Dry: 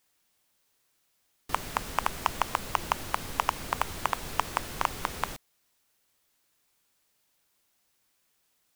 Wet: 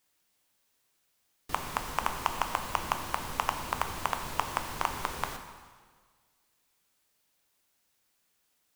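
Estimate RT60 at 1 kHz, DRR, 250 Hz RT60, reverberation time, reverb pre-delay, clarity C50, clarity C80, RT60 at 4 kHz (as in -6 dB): 1.6 s, 5.5 dB, 1.5 s, 1.6 s, 6 ms, 7.5 dB, 8.5 dB, 1.5 s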